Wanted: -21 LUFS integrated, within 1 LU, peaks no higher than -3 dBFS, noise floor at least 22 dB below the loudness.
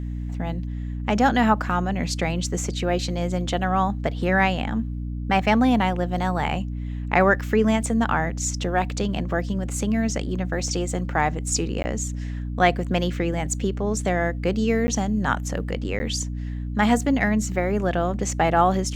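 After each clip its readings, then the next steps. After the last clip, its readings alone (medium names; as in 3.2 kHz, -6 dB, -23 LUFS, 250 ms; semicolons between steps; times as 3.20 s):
dropouts 3; longest dropout 10 ms; hum 60 Hz; highest harmonic 300 Hz; hum level -27 dBFS; loudness -23.5 LUFS; peak level -3.5 dBFS; loudness target -21.0 LUFS
-> interpolate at 11.83/14.87/15.99 s, 10 ms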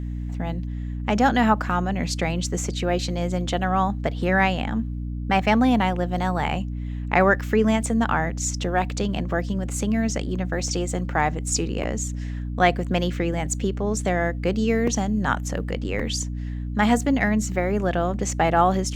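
dropouts 0; hum 60 Hz; highest harmonic 300 Hz; hum level -27 dBFS
-> de-hum 60 Hz, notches 5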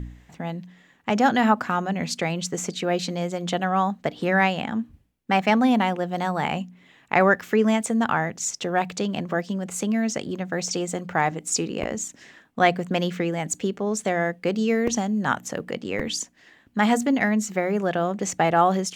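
hum not found; loudness -24.0 LUFS; peak level -3.5 dBFS; loudness target -21.0 LUFS
-> trim +3 dB; peak limiter -3 dBFS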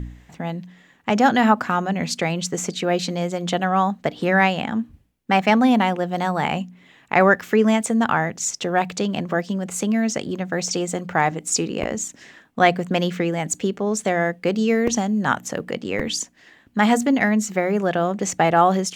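loudness -21.0 LUFS; peak level -3.0 dBFS; noise floor -54 dBFS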